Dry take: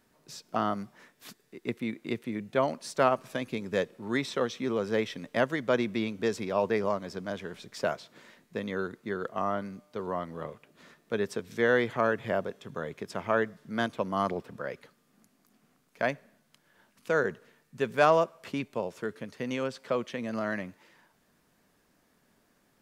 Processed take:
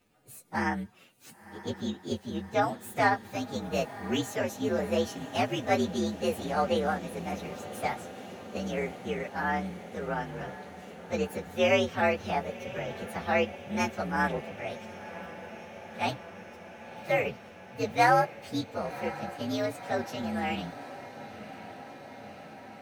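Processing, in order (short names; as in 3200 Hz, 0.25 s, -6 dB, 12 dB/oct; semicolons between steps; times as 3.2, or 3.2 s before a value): inharmonic rescaling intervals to 122%; diffused feedback echo 1.044 s, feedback 74%, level -15 dB; gain +2.5 dB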